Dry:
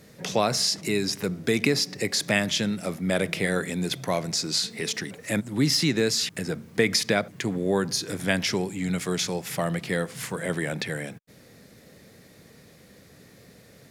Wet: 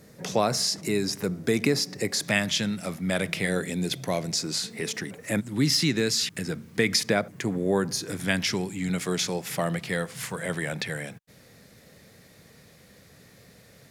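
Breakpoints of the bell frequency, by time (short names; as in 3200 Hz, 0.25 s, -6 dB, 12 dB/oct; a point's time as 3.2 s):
bell -5 dB 1.3 oct
3000 Hz
from 2.25 s 410 Hz
from 3.47 s 1200 Hz
from 4.39 s 4100 Hz
from 5.38 s 640 Hz
from 7 s 3600 Hz
from 8.12 s 550 Hz
from 8.89 s 63 Hz
from 9.76 s 310 Hz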